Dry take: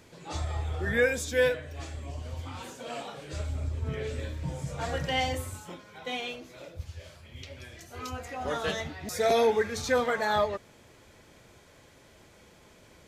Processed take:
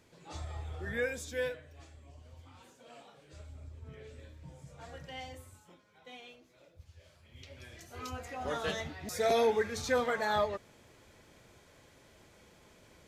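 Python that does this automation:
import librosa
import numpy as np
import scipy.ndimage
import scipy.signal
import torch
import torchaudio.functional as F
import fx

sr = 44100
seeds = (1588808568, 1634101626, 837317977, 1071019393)

y = fx.gain(x, sr, db=fx.line((1.3, -9.0), (1.96, -16.0), (6.79, -16.0), (7.73, -4.0)))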